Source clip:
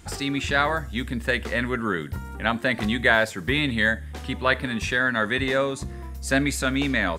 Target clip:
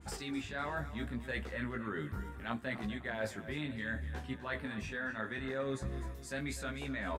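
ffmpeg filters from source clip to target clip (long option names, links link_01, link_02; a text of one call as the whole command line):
ffmpeg -i in.wav -af "areverse,acompressor=threshold=-31dB:ratio=6,areverse,flanger=delay=15:depth=5.1:speed=0.71,aecho=1:1:252|504|756|1008:0.2|0.0938|0.0441|0.0207,adynamicequalizer=threshold=0.00224:dfrequency=2300:dqfactor=0.7:tfrequency=2300:tqfactor=0.7:attack=5:release=100:ratio=0.375:range=3.5:mode=cutabove:tftype=highshelf,volume=-1.5dB" out.wav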